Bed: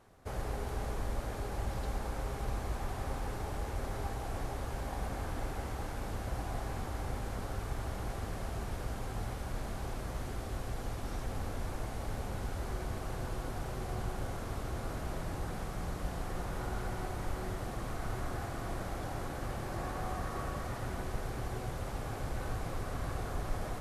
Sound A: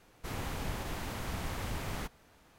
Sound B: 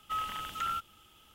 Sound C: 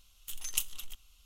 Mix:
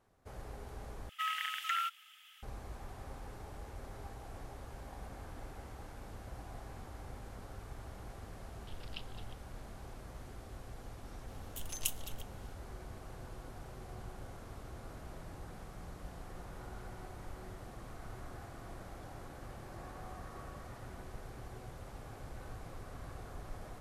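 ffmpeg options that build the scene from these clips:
-filter_complex "[3:a]asplit=2[a][b];[0:a]volume=-10dB[c];[2:a]highpass=f=1.9k:t=q:w=3.4[d];[a]aresample=11025,aresample=44100[e];[b]acompressor=mode=upward:threshold=-53dB:ratio=2.5:attack=3.2:release=140:knee=2.83:detection=peak[f];[c]asplit=2[g][h];[g]atrim=end=1.094[i];[d]atrim=end=1.34,asetpts=PTS-STARTPTS,volume=-1dB[j];[h]atrim=start=2.426[k];[e]atrim=end=1.25,asetpts=PTS-STARTPTS,volume=-9dB,afade=t=in:d=0.004:c=hsin,afade=t=out:st=1.246:d=0.004:c=hsin,adelay=8390[l];[f]atrim=end=1.25,asetpts=PTS-STARTPTS,volume=-4dB,afade=t=in:d=0.004:c=hsin,afade=t=out:st=1.246:d=0.004:c=hsin,adelay=11280[m];[i][j]acrossfade=d=0.004:c1=hsin:c2=hsin[n];[n][k]acrossfade=d=0.004:c1=hsin:c2=hsin[o];[o][l][m]amix=inputs=3:normalize=0"

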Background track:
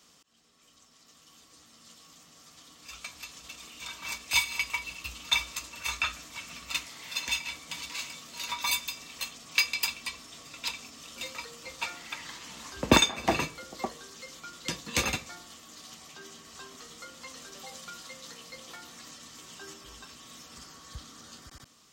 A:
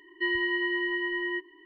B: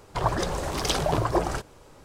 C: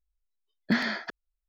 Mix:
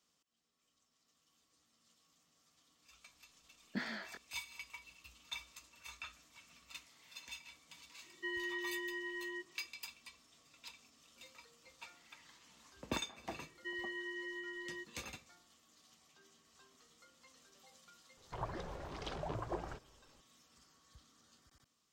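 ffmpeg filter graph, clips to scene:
-filter_complex "[1:a]asplit=2[a][b];[0:a]volume=-19dB[c];[3:a]flanger=delay=17.5:depth=6.3:speed=2.4[d];[b]equalizer=f=700:t=o:w=0.44:g=-15[e];[2:a]lowpass=3.5k[f];[d]atrim=end=1.48,asetpts=PTS-STARTPTS,volume=-11dB,afade=t=in:d=0.004:c=hsin,afade=t=out:st=1.476:d=0.004:c=hsin,adelay=134505S[g];[a]atrim=end=1.65,asetpts=PTS-STARTPTS,volume=-13dB,afade=t=in:d=0.004:c=hsin,afade=t=out:st=1.646:d=0.004:c=hsin,adelay=353682S[h];[e]atrim=end=1.65,asetpts=PTS-STARTPTS,volume=-15dB,afade=t=in:d=0.004:c=hsin,afade=t=out:st=1.646:d=0.004:c=hsin,adelay=13440[i];[f]atrim=end=2.04,asetpts=PTS-STARTPTS,volume=-17dB,afade=t=in:d=0.004:c=hsin,afade=t=out:st=2.036:d=0.004:c=hsin,adelay=18170[j];[c][g][h][i][j]amix=inputs=5:normalize=0"

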